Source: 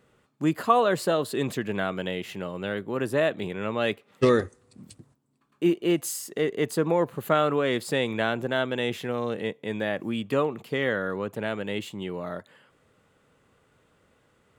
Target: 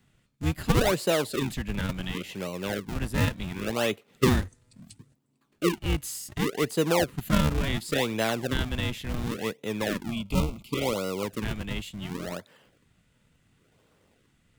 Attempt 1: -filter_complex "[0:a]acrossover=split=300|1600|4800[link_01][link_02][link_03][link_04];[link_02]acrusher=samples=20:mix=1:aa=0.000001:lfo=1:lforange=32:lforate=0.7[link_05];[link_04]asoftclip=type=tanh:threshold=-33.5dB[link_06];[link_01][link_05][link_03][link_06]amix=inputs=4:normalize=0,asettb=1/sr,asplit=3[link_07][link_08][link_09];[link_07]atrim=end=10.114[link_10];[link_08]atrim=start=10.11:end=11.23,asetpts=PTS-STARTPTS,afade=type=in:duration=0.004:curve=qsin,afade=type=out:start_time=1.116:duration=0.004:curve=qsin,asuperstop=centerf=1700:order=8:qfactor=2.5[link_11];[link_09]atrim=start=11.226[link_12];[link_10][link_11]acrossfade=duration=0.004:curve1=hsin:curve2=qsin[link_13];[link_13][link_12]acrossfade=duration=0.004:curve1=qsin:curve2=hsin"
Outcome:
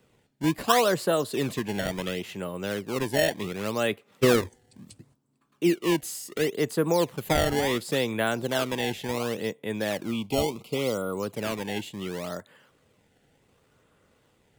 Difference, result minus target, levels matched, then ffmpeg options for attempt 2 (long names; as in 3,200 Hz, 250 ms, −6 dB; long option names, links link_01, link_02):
sample-and-hold swept by an LFO: distortion −15 dB
-filter_complex "[0:a]acrossover=split=300|1600|4800[link_01][link_02][link_03][link_04];[link_02]acrusher=samples=66:mix=1:aa=0.000001:lfo=1:lforange=106:lforate=0.7[link_05];[link_04]asoftclip=type=tanh:threshold=-33.5dB[link_06];[link_01][link_05][link_03][link_06]amix=inputs=4:normalize=0,asettb=1/sr,asplit=3[link_07][link_08][link_09];[link_07]atrim=end=10.114[link_10];[link_08]atrim=start=10.11:end=11.23,asetpts=PTS-STARTPTS,afade=type=in:duration=0.004:curve=qsin,afade=type=out:start_time=1.116:duration=0.004:curve=qsin,asuperstop=centerf=1700:order=8:qfactor=2.5[link_11];[link_09]atrim=start=11.226[link_12];[link_10][link_11]acrossfade=duration=0.004:curve1=hsin:curve2=qsin[link_13];[link_13][link_12]acrossfade=duration=0.004:curve1=qsin:curve2=hsin"